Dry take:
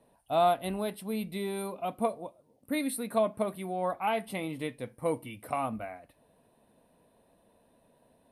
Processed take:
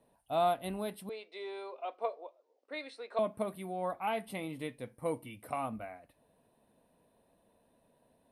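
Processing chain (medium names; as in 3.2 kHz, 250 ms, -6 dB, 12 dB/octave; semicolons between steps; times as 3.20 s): 1.09–3.19 s: elliptic band-pass 410–5800 Hz, stop band 40 dB; trim -4.5 dB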